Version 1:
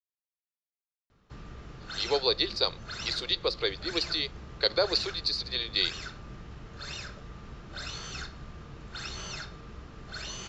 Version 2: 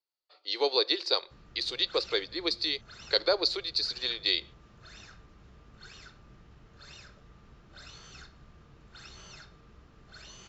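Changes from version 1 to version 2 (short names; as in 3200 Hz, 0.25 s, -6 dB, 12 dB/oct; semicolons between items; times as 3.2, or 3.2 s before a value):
speech: entry -1.50 s; background -10.5 dB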